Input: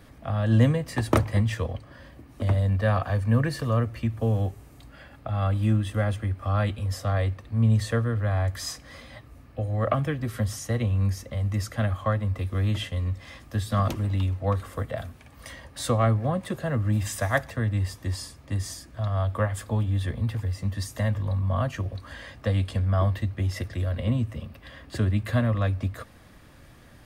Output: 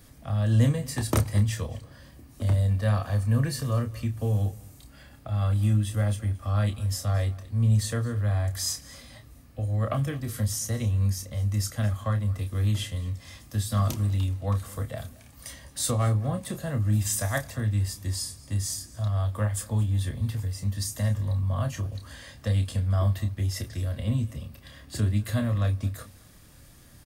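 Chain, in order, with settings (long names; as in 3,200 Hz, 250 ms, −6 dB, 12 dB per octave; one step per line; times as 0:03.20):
bass and treble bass +5 dB, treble +14 dB
double-tracking delay 29 ms −7.5 dB
on a send: single-tap delay 221 ms −21.5 dB
on the sum: level −6.5 dB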